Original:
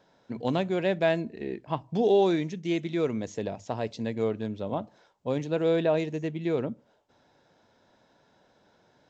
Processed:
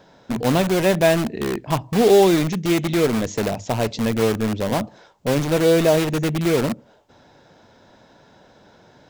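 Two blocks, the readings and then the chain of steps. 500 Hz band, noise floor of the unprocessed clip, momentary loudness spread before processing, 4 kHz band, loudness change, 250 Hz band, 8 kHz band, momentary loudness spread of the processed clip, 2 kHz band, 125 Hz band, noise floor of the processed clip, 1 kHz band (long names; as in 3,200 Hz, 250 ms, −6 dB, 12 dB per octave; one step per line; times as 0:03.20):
+8.0 dB, −65 dBFS, 12 LU, +12.5 dB, +9.0 dB, +9.5 dB, can't be measured, 10 LU, +10.5 dB, +11.0 dB, −53 dBFS, +9.0 dB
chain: low-shelf EQ 190 Hz +4 dB
in parallel at −4 dB: wrap-around overflow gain 28 dB
on the sum: level +7.5 dB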